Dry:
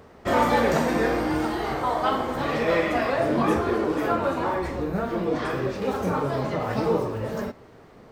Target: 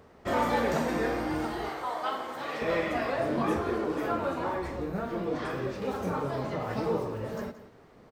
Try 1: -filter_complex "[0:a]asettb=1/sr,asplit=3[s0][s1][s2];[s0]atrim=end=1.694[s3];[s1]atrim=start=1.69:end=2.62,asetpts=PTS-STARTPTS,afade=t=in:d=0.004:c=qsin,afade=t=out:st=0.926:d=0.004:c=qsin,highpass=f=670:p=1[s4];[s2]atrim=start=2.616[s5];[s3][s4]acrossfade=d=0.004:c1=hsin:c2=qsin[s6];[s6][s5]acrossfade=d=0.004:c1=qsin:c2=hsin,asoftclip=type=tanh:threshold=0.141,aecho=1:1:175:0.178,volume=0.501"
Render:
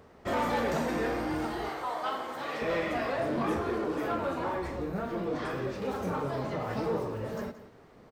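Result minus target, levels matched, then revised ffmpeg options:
saturation: distortion +17 dB
-filter_complex "[0:a]asettb=1/sr,asplit=3[s0][s1][s2];[s0]atrim=end=1.694[s3];[s1]atrim=start=1.69:end=2.62,asetpts=PTS-STARTPTS,afade=t=in:d=0.004:c=qsin,afade=t=out:st=0.926:d=0.004:c=qsin,highpass=f=670:p=1[s4];[s2]atrim=start=2.616[s5];[s3][s4]acrossfade=d=0.004:c1=hsin:c2=qsin[s6];[s6][s5]acrossfade=d=0.004:c1=qsin:c2=hsin,asoftclip=type=tanh:threshold=0.473,aecho=1:1:175:0.178,volume=0.501"

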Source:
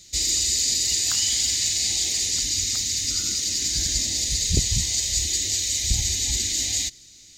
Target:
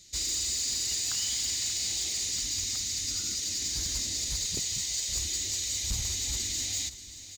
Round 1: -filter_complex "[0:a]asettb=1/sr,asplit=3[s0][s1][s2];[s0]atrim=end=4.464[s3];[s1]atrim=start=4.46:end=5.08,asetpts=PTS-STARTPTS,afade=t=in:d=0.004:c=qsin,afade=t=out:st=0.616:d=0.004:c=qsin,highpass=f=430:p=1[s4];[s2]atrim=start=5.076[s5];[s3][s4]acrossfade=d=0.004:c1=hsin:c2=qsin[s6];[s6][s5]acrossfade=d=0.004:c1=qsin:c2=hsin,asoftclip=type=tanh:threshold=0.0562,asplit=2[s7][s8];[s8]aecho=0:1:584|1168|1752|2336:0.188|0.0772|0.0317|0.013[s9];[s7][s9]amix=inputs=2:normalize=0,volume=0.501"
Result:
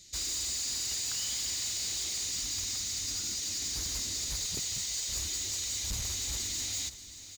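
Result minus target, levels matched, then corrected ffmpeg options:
saturation: distortion +6 dB
-filter_complex "[0:a]asettb=1/sr,asplit=3[s0][s1][s2];[s0]atrim=end=4.464[s3];[s1]atrim=start=4.46:end=5.08,asetpts=PTS-STARTPTS,afade=t=in:d=0.004:c=qsin,afade=t=out:st=0.616:d=0.004:c=qsin,highpass=f=430:p=1[s4];[s2]atrim=start=5.076[s5];[s3][s4]acrossfade=d=0.004:c1=hsin:c2=qsin[s6];[s6][s5]acrossfade=d=0.004:c1=qsin:c2=hsin,asoftclip=type=tanh:threshold=0.119,asplit=2[s7][s8];[s8]aecho=0:1:584|1168|1752|2336:0.188|0.0772|0.0317|0.013[s9];[s7][s9]amix=inputs=2:normalize=0,volume=0.501"

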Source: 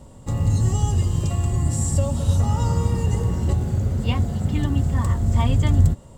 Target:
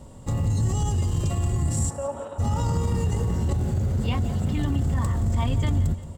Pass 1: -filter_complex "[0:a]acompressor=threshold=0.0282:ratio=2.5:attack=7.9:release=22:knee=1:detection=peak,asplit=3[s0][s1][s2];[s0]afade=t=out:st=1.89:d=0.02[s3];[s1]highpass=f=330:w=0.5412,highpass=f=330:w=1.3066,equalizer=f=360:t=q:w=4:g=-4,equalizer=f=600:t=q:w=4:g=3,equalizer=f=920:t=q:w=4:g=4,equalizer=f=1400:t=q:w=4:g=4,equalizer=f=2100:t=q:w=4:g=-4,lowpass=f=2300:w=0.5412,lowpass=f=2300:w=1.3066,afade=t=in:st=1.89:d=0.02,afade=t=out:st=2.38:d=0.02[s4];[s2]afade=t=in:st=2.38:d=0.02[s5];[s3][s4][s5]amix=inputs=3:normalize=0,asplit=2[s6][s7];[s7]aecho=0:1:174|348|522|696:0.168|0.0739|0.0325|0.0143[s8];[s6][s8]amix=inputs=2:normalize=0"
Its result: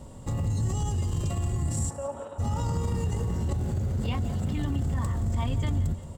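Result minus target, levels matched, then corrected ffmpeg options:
compression: peak gain reduction +4 dB
-filter_complex "[0:a]acompressor=threshold=0.0631:ratio=2.5:attack=7.9:release=22:knee=1:detection=peak,asplit=3[s0][s1][s2];[s0]afade=t=out:st=1.89:d=0.02[s3];[s1]highpass=f=330:w=0.5412,highpass=f=330:w=1.3066,equalizer=f=360:t=q:w=4:g=-4,equalizer=f=600:t=q:w=4:g=3,equalizer=f=920:t=q:w=4:g=4,equalizer=f=1400:t=q:w=4:g=4,equalizer=f=2100:t=q:w=4:g=-4,lowpass=f=2300:w=0.5412,lowpass=f=2300:w=1.3066,afade=t=in:st=1.89:d=0.02,afade=t=out:st=2.38:d=0.02[s4];[s2]afade=t=in:st=2.38:d=0.02[s5];[s3][s4][s5]amix=inputs=3:normalize=0,asplit=2[s6][s7];[s7]aecho=0:1:174|348|522|696:0.168|0.0739|0.0325|0.0143[s8];[s6][s8]amix=inputs=2:normalize=0"

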